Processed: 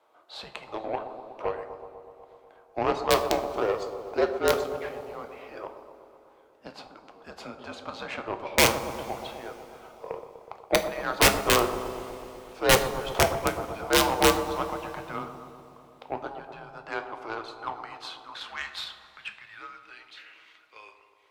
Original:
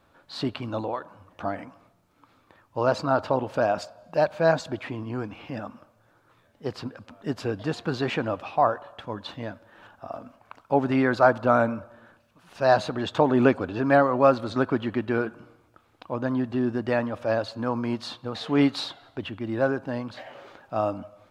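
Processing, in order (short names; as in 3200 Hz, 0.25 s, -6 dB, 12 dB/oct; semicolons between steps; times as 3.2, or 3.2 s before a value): HPF 400 Hz 12 dB/oct; in parallel at 0 dB: compressor 10:1, threshold -32 dBFS, peak gain reduction 19.5 dB; on the sum: high-pass sweep 820 Hz -> 2500 Hz, 16.17–20.13; wrapped overs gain 7 dB; added harmonics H 2 -14 dB, 7 -22 dB, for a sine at -2.5 dBFS; frequency shift -220 Hz; on a send: analogue delay 0.123 s, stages 1024, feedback 74%, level -10 dB; on the sum: two-slope reverb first 0.38 s, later 3.4 s, from -18 dB, DRR 7.5 dB; gain -4 dB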